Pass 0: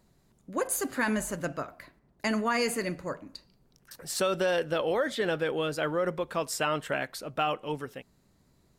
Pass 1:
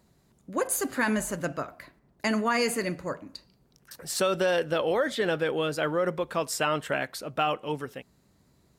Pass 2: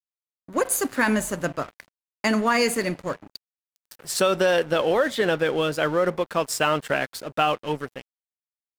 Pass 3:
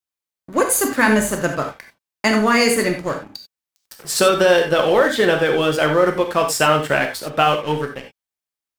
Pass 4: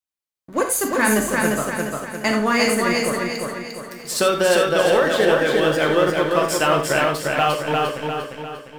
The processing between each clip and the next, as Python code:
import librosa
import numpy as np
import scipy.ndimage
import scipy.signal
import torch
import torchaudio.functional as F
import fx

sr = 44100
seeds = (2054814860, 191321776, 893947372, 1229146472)

y1 = scipy.signal.sosfilt(scipy.signal.butter(2, 42.0, 'highpass', fs=sr, output='sos'), x)
y1 = y1 * 10.0 ** (2.0 / 20.0)
y2 = np.sign(y1) * np.maximum(np.abs(y1) - 10.0 ** (-44.0 / 20.0), 0.0)
y2 = y2 * 10.0 ** (5.5 / 20.0)
y3 = fx.rev_gated(y2, sr, seeds[0], gate_ms=110, shape='flat', drr_db=3.5)
y3 = y3 * 10.0 ** (5.0 / 20.0)
y4 = fx.echo_feedback(y3, sr, ms=350, feedback_pct=47, wet_db=-3)
y4 = y4 * 10.0 ** (-3.5 / 20.0)